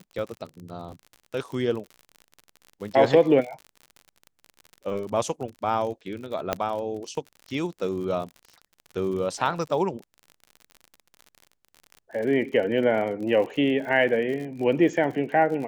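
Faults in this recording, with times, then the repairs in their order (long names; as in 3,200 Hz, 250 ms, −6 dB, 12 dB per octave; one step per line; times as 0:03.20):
surface crackle 49 per second −34 dBFS
0:06.53: click −9 dBFS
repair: click removal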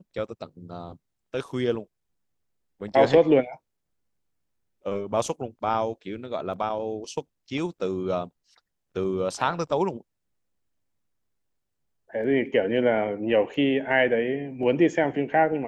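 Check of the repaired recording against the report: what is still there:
0:06.53: click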